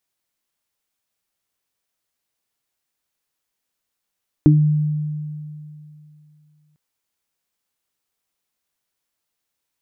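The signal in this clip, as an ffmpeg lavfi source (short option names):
-f lavfi -i "aevalsrc='0.355*pow(10,-3*t/2.77)*sin(2*PI*151*t)+0.531*pow(10,-3*t/0.23)*sin(2*PI*302*t)':d=2.3:s=44100"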